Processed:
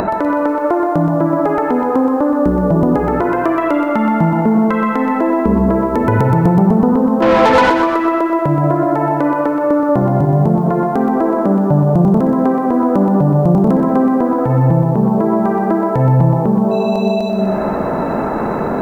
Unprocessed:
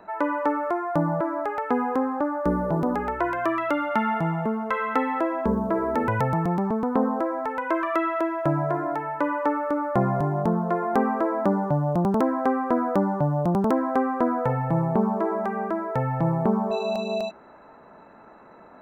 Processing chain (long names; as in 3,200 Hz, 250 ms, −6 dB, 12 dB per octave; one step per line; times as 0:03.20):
0:05.67–0:06.71: high-shelf EQ 2,100 Hz +6 dB
0:10.02–0:10.48: high-pass filter 54 Hz 12 dB per octave
spring reverb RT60 1 s, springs 46/51 ms, chirp 75 ms, DRR 16 dB
upward compression, threshold −27 dBFS
tape delay 94 ms, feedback 85%, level −10 dB, low-pass 1,600 Hz
downward compressor 12 to 1, threshold −31 dBFS, peak gain reduction 15 dB
tilt shelving filter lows +6 dB, about 640 Hz
0:07.22–0:07.70: mid-hump overdrive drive 24 dB, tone 3,900 Hz, clips at −22.5 dBFS
boost into a limiter +23 dB
feedback echo at a low word length 124 ms, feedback 55%, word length 7 bits, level −7.5 dB
level −4.5 dB